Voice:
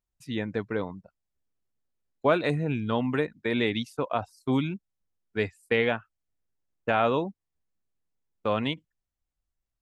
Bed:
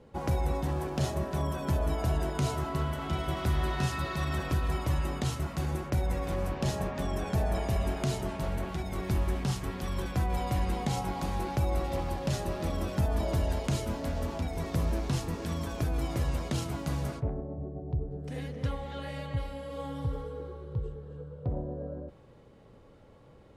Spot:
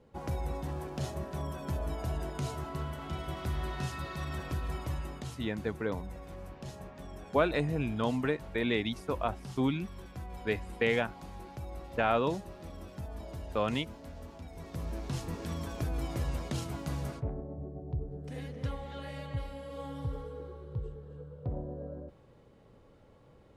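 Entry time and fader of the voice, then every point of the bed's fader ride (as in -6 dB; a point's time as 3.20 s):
5.10 s, -4.0 dB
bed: 4.84 s -6 dB
5.63 s -13.5 dB
14.41 s -13.5 dB
15.32 s -3.5 dB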